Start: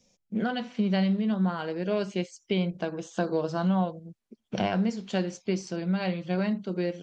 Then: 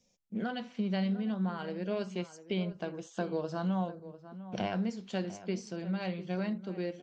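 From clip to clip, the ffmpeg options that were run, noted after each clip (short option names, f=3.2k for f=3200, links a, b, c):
-filter_complex "[0:a]asplit=2[a][b];[b]adelay=699.7,volume=-14dB,highshelf=f=4k:g=-15.7[c];[a][c]amix=inputs=2:normalize=0,volume=-6.5dB"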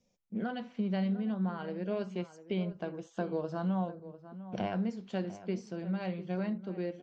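-af "highshelf=f=3k:g=-10"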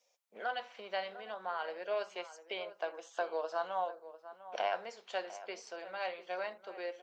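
-af "highpass=f=590:w=0.5412,highpass=f=590:w=1.3066,volume=5dB"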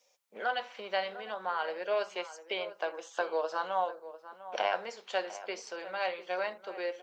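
-af "bandreject=f=680:w=12,volume=5.5dB"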